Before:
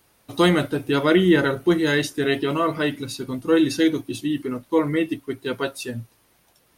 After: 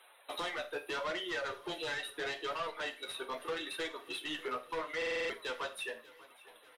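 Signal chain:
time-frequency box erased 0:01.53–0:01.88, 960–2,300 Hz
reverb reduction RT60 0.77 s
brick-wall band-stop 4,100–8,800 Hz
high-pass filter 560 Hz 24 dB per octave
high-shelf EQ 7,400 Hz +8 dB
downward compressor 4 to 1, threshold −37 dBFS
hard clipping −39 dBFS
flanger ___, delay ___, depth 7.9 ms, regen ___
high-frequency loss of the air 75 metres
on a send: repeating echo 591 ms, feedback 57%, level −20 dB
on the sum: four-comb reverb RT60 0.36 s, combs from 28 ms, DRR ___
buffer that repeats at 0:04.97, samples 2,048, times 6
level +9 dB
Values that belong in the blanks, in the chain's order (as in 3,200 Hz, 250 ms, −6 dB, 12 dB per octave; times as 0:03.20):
0.77 Hz, 7.5 ms, +33%, 11 dB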